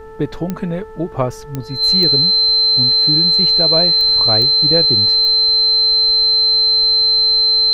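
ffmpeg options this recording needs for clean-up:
ffmpeg -i in.wav -af "adeclick=threshold=4,bandreject=frequency=440:width_type=h:width=4,bandreject=frequency=880:width_type=h:width=4,bandreject=frequency=1320:width_type=h:width=4,bandreject=frequency=1760:width_type=h:width=4,bandreject=frequency=4100:width=30,agate=range=-21dB:threshold=-23dB" out.wav

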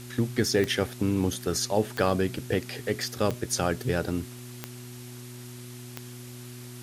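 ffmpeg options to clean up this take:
ffmpeg -i in.wav -af "adeclick=threshold=4,bandreject=frequency=122.4:width_type=h:width=4,bandreject=frequency=244.8:width_type=h:width=4,bandreject=frequency=367.2:width_type=h:width=4,afftdn=noise_reduction=30:noise_floor=-42" out.wav

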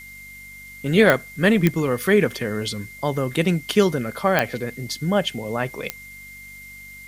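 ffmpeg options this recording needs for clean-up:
ffmpeg -i in.wav -af "adeclick=threshold=4,bandreject=frequency=48.5:width_type=h:width=4,bandreject=frequency=97:width_type=h:width=4,bandreject=frequency=145.5:width_type=h:width=4,bandreject=frequency=194:width_type=h:width=4,bandreject=frequency=242.5:width_type=h:width=4,bandreject=frequency=2100:width=30,afftdn=noise_reduction=24:noise_floor=-41" out.wav

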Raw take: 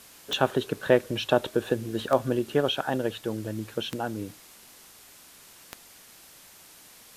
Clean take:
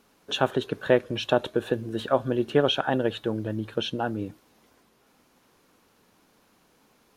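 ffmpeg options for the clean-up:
ffmpeg -i in.wav -af "adeclick=threshold=4,afwtdn=0.0032,asetnsamples=nb_out_samples=441:pad=0,asendcmd='2.39 volume volume 3dB',volume=0dB" out.wav

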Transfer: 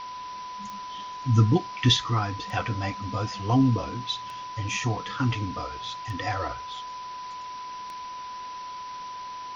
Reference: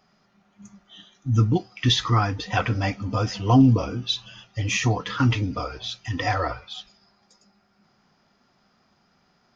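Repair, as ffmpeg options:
ffmpeg -i in.wav -af "adeclick=threshold=4,bandreject=frequency=1000:width=30,afwtdn=0.0071,asetnsamples=nb_out_samples=441:pad=0,asendcmd='1.97 volume volume 5.5dB',volume=0dB" out.wav

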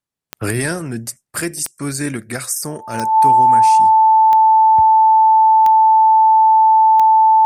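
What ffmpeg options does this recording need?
ffmpeg -i in.wav -af "adeclick=threshold=4,bandreject=frequency=880:width=30" out.wav

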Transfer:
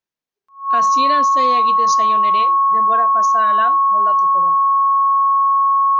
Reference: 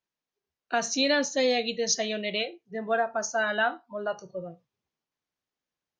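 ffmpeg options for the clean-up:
ffmpeg -i in.wav -af "bandreject=frequency=1100:width=30" out.wav

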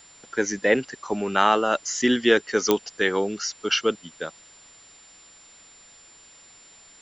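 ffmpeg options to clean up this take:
ffmpeg -i in.wav -af "adeclick=threshold=4,bandreject=frequency=7200:width=30,afwtdn=0.0032" out.wav

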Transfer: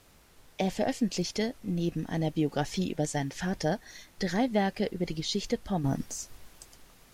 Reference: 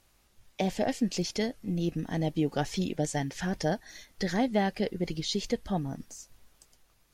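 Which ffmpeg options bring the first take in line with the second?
ffmpeg -i in.wav -af "agate=range=-21dB:threshold=-49dB,asetnsamples=nb_out_samples=441:pad=0,asendcmd='5.84 volume volume -8dB',volume=0dB" out.wav

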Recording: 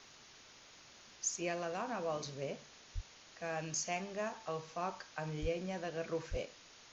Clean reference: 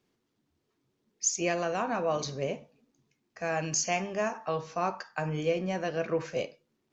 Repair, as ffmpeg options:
ffmpeg -i in.wav -filter_complex "[0:a]asplit=3[link_01][link_02][link_03];[link_01]afade=type=out:start_time=2.94:duration=0.02[link_04];[link_02]highpass=frequency=140:width=0.5412,highpass=frequency=140:width=1.3066,afade=type=in:start_time=2.94:duration=0.02,afade=type=out:start_time=3.06:duration=0.02[link_05];[link_03]afade=type=in:start_time=3.06:duration=0.02[link_06];[link_04][link_05][link_06]amix=inputs=3:normalize=0,asplit=3[link_07][link_08][link_09];[link_07]afade=type=out:start_time=5.41:duration=0.02[link_10];[link_08]highpass=frequency=140:width=0.5412,highpass=frequency=140:width=1.3066,afade=type=in:start_time=5.41:duration=0.02,afade=type=out:start_time=5.53:duration=0.02[link_11];[link_09]afade=type=in:start_time=5.53:duration=0.02[link_12];[link_10][link_11][link_12]amix=inputs=3:normalize=0,asplit=3[link_13][link_14][link_15];[link_13]afade=type=out:start_time=6.3:duration=0.02[link_16];[link_14]highpass=frequency=140:width=0.5412,highpass=frequency=140:width=1.3066,afade=type=in:start_time=6.3:duration=0.02,afade=type=out:start_time=6.42:duration=0.02[link_17];[link_15]afade=type=in:start_time=6.42:duration=0.02[link_18];[link_16][link_17][link_18]amix=inputs=3:normalize=0,afwtdn=0.002,asetnsamples=nb_out_samples=441:pad=0,asendcmd='1.16 volume volume 9dB',volume=0dB" out.wav

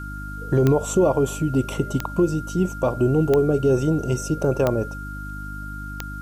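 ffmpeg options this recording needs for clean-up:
ffmpeg -i in.wav -af "adeclick=threshold=4,bandreject=frequency=50.5:width_type=h:width=4,bandreject=frequency=101:width_type=h:width=4,bandreject=frequency=151.5:width_type=h:width=4,bandreject=frequency=202:width_type=h:width=4,bandreject=frequency=252.5:width_type=h:width=4,bandreject=frequency=303:width_type=h:width=4,bandreject=frequency=1400:width=30,agate=range=-21dB:threshold=-25dB" out.wav

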